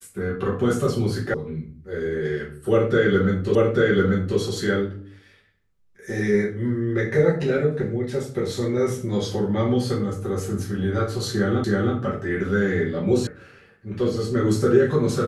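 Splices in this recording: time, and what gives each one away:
0:01.34: cut off before it has died away
0:03.55: the same again, the last 0.84 s
0:11.64: the same again, the last 0.32 s
0:13.27: cut off before it has died away

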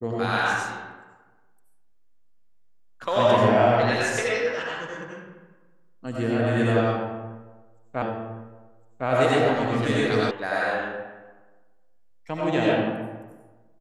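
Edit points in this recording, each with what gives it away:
0:08.02: the same again, the last 1.06 s
0:10.31: cut off before it has died away

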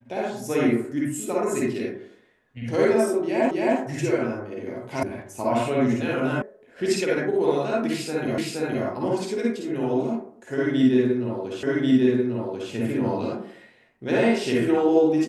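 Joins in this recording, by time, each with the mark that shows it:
0:03.51: the same again, the last 0.27 s
0:05.03: cut off before it has died away
0:06.42: cut off before it has died away
0:08.38: the same again, the last 0.47 s
0:11.63: the same again, the last 1.09 s

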